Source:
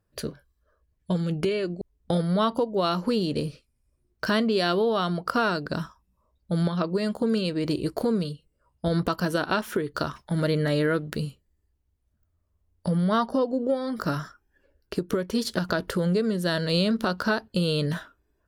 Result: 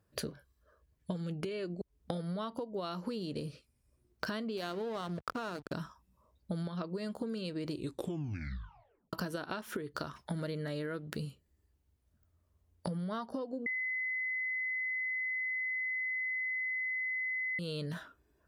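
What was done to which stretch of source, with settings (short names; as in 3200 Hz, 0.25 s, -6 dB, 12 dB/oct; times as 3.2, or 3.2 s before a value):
4.57–5.73 backlash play -25 dBFS
7.75 tape stop 1.38 s
13.66–17.59 bleep 2030 Hz -16 dBFS
whole clip: HPF 56 Hz; compressor 16:1, threshold -36 dBFS; gain +1.5 dB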